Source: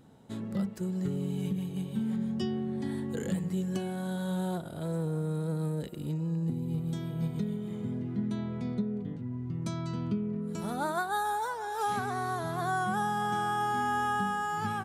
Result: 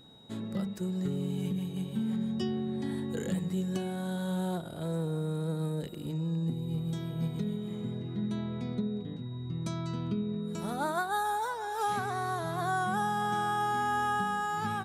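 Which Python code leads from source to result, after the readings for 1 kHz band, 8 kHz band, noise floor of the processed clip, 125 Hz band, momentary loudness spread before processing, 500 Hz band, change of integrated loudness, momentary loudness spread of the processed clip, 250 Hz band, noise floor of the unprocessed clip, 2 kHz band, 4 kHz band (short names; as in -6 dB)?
0.0 dB, 0.0 dB, -40 dBFS, -0.5 dB, 6 LU, 0.0 dB, -0.5 dB, 6 LU, -0.5 dB, -40 dBFS, 0.0 dB, +1.5 dB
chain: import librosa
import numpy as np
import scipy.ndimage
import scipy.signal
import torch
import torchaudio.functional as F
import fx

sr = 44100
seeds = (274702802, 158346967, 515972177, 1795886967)

y = fx.hum_notches(x, sr, base_hz=50, count=5)
y = y + 10.0 ** (-56.0 / 20.0) * np.sin(2.0 * np.pi * 3800.0 * np.arange(len(y)) / sr)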